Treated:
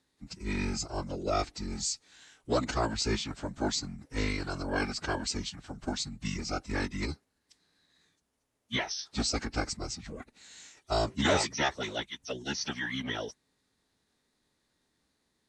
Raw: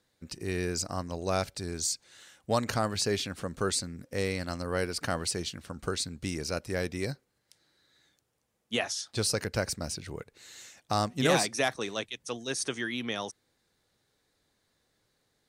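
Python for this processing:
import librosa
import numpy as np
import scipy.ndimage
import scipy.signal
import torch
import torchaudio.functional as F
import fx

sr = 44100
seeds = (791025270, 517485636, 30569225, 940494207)

y = fx.pitch_keep_formants(x, sr, semitones=-11.0)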